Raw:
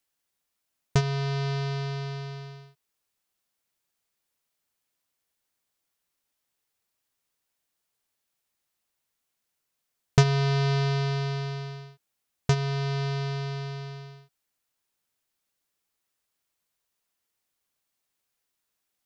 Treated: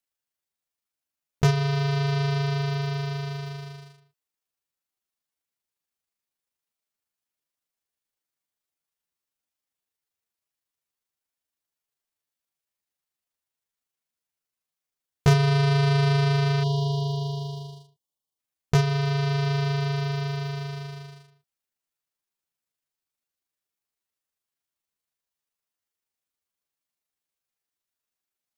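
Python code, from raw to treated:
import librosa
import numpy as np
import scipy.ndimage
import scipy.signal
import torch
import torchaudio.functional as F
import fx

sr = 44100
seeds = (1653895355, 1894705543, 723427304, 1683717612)

y = fx.stretch_grains(x, sr, factor=1.5, grain_ms=79.0)
y = fx.leveller(y, sr, passes=2)
y = fx.spec_erase(y, sr, start_s=16.63, length_s=1.75, low_hz=1200.0, high_hz=2800.0)
y = F.gain(torch.from_numpy(y), -3.0).numpy()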